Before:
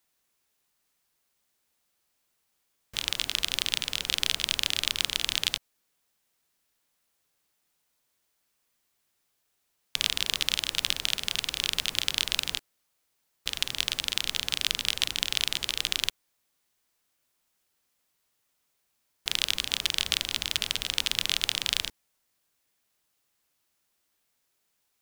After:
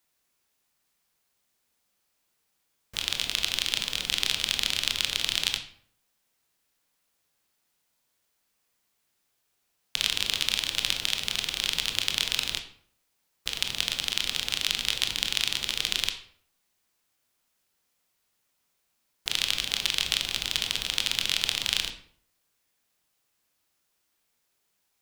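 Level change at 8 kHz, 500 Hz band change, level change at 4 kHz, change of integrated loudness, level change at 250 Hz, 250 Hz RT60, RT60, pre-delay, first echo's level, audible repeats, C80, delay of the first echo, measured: +0.5 dB, +1.0 dB, +1.0 dB, +1.0 dB, +1.5 dB, 0.60 s, 0.60 s, 19 ms, no echo, no echo, 13.5 dB, no echo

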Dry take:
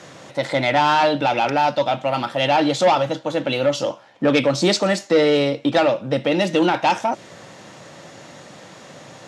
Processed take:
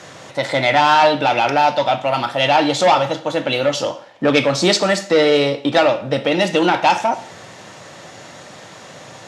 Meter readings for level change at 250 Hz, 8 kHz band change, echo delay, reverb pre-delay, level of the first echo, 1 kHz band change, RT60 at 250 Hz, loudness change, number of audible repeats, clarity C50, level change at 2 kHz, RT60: +0.5 dB, +4.5 dB, no echo, 3 ms, no echo, +4.0 dB, 0.50 s, +3.0 dB, no echo, 14.5 dB, +4.5 dB, 0.55 s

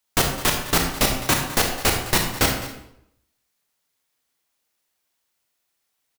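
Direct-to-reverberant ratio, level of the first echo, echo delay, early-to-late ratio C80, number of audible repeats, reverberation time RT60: 2.0 dB, -15.5 dB, 209 ms, 7.0 dB, 1, 0.80 s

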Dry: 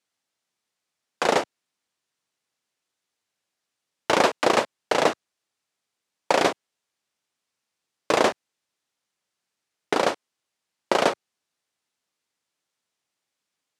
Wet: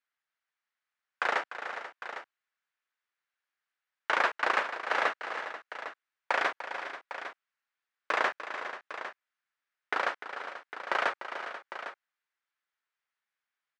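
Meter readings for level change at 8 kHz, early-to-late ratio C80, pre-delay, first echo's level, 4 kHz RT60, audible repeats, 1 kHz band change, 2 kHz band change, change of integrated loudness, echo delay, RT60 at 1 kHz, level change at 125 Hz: -17.5 dB, no reverb, no reverb, -12.0 dB, no reverb, 4, -6.0 dB, -0.5 dB, -9.5 dB, 297 ms, no reverb, under -20 dB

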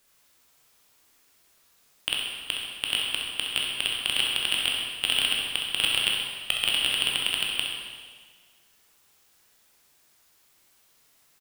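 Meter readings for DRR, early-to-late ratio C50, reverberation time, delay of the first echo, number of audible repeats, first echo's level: -2.5 dB, -0.5 dB, 1.6 s, 65 ms, 1, -7.0 dB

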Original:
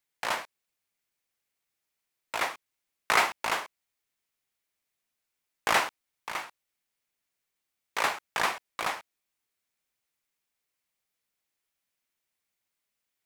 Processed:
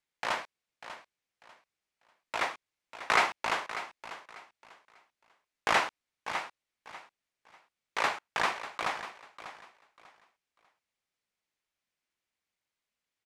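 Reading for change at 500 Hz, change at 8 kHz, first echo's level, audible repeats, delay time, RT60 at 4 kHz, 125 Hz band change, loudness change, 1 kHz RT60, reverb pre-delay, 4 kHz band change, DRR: -1.0 dB, -6.0 dB, -13.0 dB, 2, 594 ms, no reverb, -1.0 dB, -2.0 dB, no reverb, no reverb, -2.5 dB, no reverb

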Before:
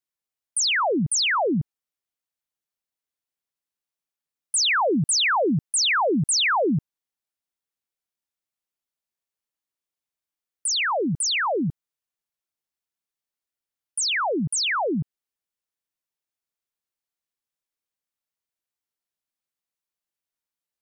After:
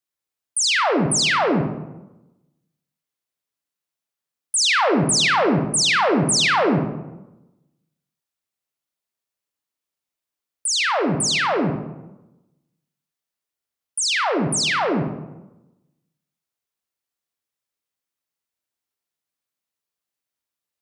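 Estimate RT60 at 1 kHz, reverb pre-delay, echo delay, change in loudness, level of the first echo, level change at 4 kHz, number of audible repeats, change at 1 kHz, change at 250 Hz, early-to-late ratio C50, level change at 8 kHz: 0.95 s, 36 ms, no echo, +3.0 dB, no echo, +3.0 dB, no echo, +3.5 dB, +3.5 dB, 5.5 dB, +3.0 dB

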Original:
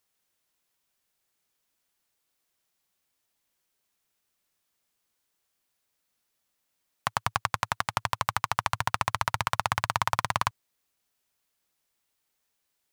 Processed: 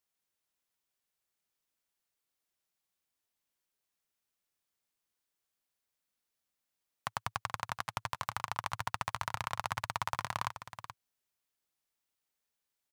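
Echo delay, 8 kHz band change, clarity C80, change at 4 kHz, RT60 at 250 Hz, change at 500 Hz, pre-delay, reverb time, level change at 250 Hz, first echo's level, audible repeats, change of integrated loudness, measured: 429 ms, -8.5 dB, no reverb, -8.5 dB, no reverb, -8.5 dB, no reverb, no reverb, -8.5 dB, -11.0 dB, 1, -9.0 dB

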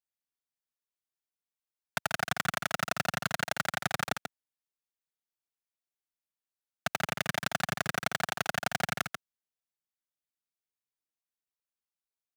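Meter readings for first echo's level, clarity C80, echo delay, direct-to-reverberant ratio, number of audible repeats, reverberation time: -7.5 dB, no reverb, 138 ms, no reverb, 1, no reverb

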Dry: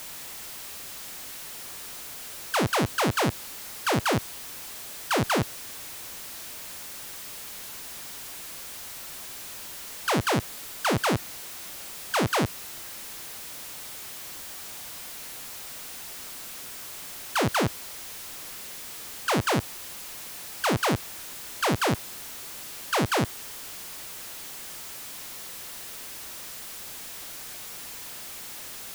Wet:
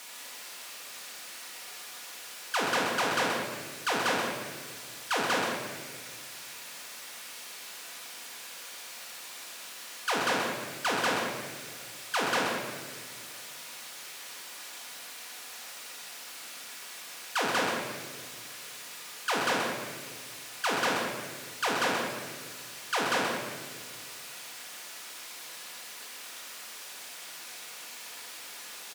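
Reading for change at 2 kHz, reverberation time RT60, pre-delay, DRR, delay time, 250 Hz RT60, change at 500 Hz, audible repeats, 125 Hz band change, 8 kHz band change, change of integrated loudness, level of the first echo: +0.5 dB, 1.7 s, 4 ms, -2.0 dB, 127 ms, 2.3 s, -3.5 dB, 1, -15.5 dB, -3.5 dB, -3.0 dB, -5.0 dB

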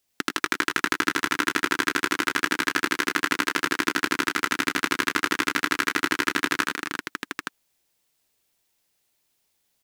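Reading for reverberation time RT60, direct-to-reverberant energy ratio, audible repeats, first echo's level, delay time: no reverb, no reverb, 3, -4.5 dB, 83 ms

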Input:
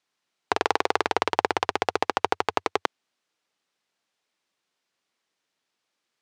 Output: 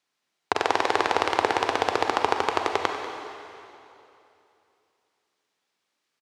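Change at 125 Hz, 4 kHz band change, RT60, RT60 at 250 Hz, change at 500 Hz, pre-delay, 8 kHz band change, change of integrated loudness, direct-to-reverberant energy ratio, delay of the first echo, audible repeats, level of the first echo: +1.5 dB, +1.5 dB, 2.9 s, 2.8 s, +1.5 dB, 30 ms, +1.5 dB, +1.0 dB, 3.5 dB, 192 ms, 1, -14.0 dB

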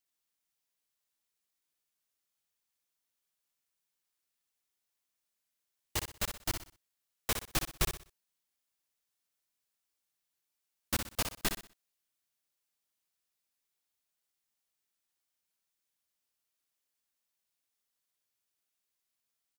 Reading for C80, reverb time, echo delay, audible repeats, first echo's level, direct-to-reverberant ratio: no reverb, no reverb, 62 ms, 3, -7.5 dB, no reverb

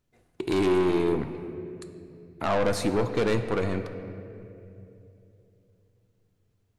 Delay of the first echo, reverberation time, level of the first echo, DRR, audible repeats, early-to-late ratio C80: no echo, 2.9 s, no echo, 7.5 dB, no echo, 10.0 dB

